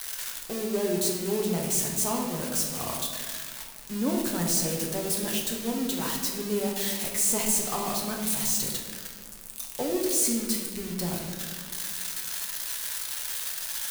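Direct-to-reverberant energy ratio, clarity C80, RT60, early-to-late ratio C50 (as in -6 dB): -1.0 dB, 5.5 dB, 1.7 s, 3.5 dB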